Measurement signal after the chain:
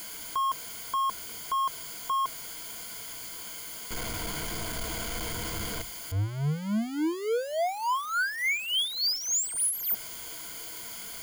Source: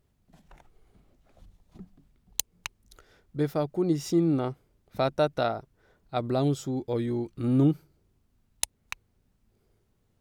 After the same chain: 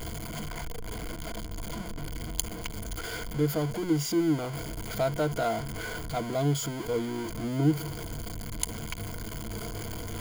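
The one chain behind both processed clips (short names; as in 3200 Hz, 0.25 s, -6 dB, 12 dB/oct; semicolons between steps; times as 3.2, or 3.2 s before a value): zero-crossing step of -25.5 dBFS; ripple EQ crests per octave 1.8, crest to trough 12 dB; gain -6.5 dB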